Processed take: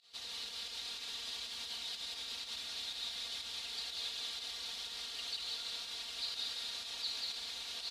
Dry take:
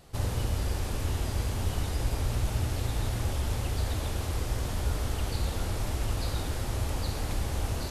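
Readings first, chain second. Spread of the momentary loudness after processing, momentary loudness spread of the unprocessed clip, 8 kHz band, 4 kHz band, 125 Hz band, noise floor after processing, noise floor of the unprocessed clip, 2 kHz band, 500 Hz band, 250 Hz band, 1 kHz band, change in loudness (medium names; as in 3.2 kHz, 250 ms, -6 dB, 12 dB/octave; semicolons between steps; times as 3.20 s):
3 LU, 2 LU, -7.0 dB, +4.5 dB, under -40 dB, -46 dBFS, -34 dBFS, -6.5 dB, -21.5 dB, -27.0 dB, -15.5 dB, -7.5 dB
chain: comb 4.3 ms, depth 78%; peak limiter -20.5 dBFS, peak gain reduction 5.5 dB; band-pass filter 3.9 kHz, Q 3.9; volume shaper 123 bpm, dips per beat 1, -19 dB, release 81 ms; on a send: delay 189 ms -3 dB; on the sum: bit-crushed delay 237 ms, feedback 55%, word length 12-bit, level -14 dB; trim +5.5 dB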